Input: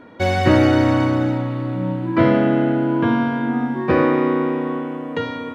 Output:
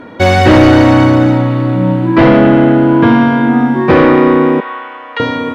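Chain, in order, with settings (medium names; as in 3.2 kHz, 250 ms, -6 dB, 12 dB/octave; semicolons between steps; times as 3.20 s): in parallel at -6 dB: sine folder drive 9 dB, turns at -2 dBFS; 4.60–5.20 s: on the sum: Butterworth band-pass 2.1 kHz, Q 0.62; trim +1.5 dB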